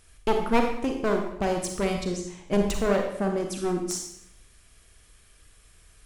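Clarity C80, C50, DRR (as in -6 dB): 7.5 dB, 5.0 dB, 3.0 dB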